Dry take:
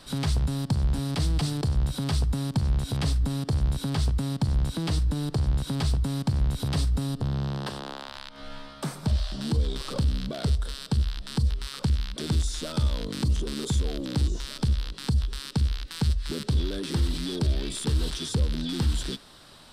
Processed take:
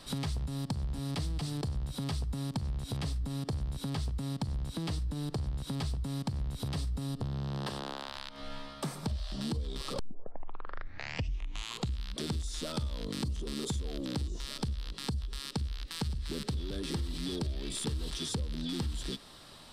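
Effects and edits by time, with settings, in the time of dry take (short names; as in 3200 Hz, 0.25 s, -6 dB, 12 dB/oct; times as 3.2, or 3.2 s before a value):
9.99 tape start 2.07 s
15.42–15.97 echo throw 0.57 s, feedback 50%, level -8 dB
whole clip: notch 1500 Hz, Q 14; compressor, threshold -30 dBFS; gain -1.5 dB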